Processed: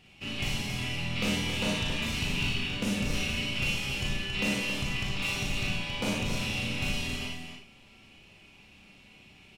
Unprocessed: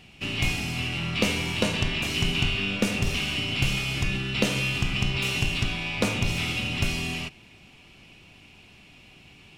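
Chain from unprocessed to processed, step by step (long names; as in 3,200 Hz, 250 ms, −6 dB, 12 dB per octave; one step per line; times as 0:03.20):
hard clipping −18 dBFS, distortion −17 dB
loudspeakers that aren't time-aligned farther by 20 metres −5 dB, 94 metres −7 dB
convolution reverb RT60 0.35 s, pre-delay 28 ms, DRR 0.5 dB
level −8 dB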